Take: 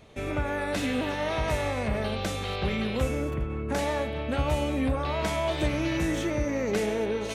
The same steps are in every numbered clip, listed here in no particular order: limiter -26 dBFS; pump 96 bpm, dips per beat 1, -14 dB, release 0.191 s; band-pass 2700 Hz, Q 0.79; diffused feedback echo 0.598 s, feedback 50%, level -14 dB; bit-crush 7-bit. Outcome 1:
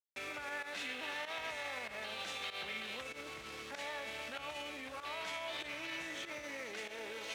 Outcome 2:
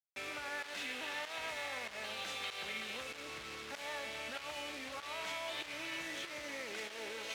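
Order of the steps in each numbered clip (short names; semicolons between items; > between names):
diffused feedback echo > bit-crush > pump > limiter > band-pass; limiter > diffused feedback echo > pump > bit-crush > band-pass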